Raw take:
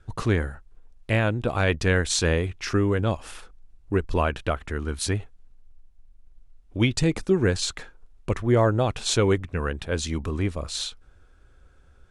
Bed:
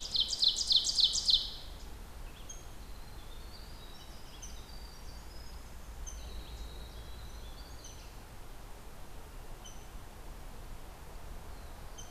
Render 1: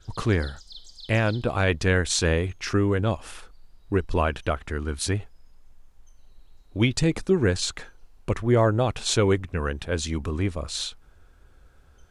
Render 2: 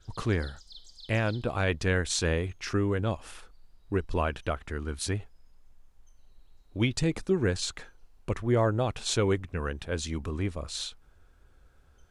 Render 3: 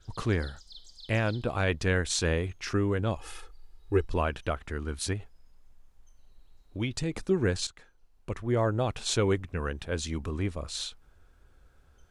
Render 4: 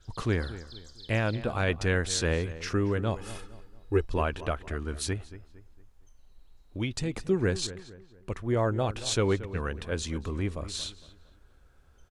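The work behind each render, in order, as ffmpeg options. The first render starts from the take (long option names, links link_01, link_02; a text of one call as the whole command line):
ffmpeg -i in.wav -i bed.wav -filter_complex "[1:a]volume=-17.5dB[link_01];[0:a][link_01]amix=inputs=2:normalize=0" out.wav
ffmpeg -i in.wav -af "volume=-5dB" out.wav
ffmpeg -i in.wav -filter_complex "[0:a]asettb=1/sr,asplit=3[link_01][link_02][link_03];[link_01]atrim=end=3.164[link_04];[link_02]atrim=start=3.16:end=4.08,asetpts=PTS-STARTPTS,afade=type=in:duration=0.004:curve=qsin,afade=type=out:start_time=0.916:duration=0.004:curve=qsin,aecho=1:1:2.4:0.81,atrim=end_sample=40572[link_05];[link_03]atrim=start=4.076[link_06];[link_04][link_05]acrossfade=duration=0.004:curve1=hsin:curve2=qsin[link_07];[link_07][link_06]acrossfade=duration=0.004:curve1=qsin:curve2=hsin,asettb=1/sr,asplit=3[link_08][link_09][link_10];[link_08]atrim=end=5.134[link_11];[link_09]atrim=start=5.13:end=7.15,asetpts=PTS-STARTPTS,afade=type=in:duration=0.004:curve=qsin,afade=type=out:start_time=2.016:duration=0.004:curve=qsin,acompressor=threshold=-34dB:ratio=1.5:attack=3.2:release=140:knee=1:detection=peak[link_12];[link_10]atrim=start=7.146[link_13];[link_11][link_12]acrossfade=duration=0.004:curve1=hsin:curve2=qsin[link_14];[link_14][link_13]acrossfade=duration=0.004:curve1=qsin:curve2=hsin,asplit=2[link_15][link_16];[link_15]atrim=end=7.67,asetpts=PTS-STARTPTS,afade=type=out:start_time=7.666:duration=0.004:curve=hsin:silence=0.211349[link_17];[link_16]atrim=start=7.67,asetpts=PTS-STARTPTS,afade=type=in:duration=1.23:silence=0.211349[link_18];[link_17][link_18]concat=n=2:v=0:a=1" out.wav
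ffmpeg -i in.wav -filter_complex "[0:a]asplit=2[link_01][link_02];[link_02]adelay=229,lowpass=frequency=2300:poles=1,volume=-14.5dB,asplit=2[link_03][link_04];[link_04]adelay=229,lowpass=frequency=2300:poles=1,volume=0.4,asplit=2[link_05][link_06];[link_06]adelay=229,lowpass=frequency=2300:poles=1,volume=0.4,asplit=2[link_07][link_08];[link_08]adelay=229,lowpass=frequency=2300:poles=1,volume=0.4[link_09];[link_01][link_03][link_05][link_07][link_09]amix=inputs=5:normalize=0" out.wav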